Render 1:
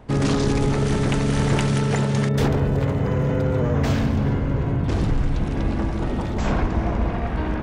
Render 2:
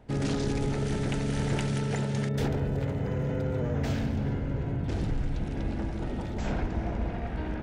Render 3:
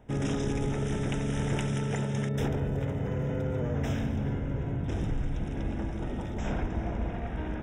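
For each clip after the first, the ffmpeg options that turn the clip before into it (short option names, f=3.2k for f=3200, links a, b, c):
-af "equalizer=f=1.1k:t=o:w=0.22:g=-10.5,volume=-8.5dB"
-af "asuperstop=centerf=4400:order=12:qfactor=3.5,volume=-1dB"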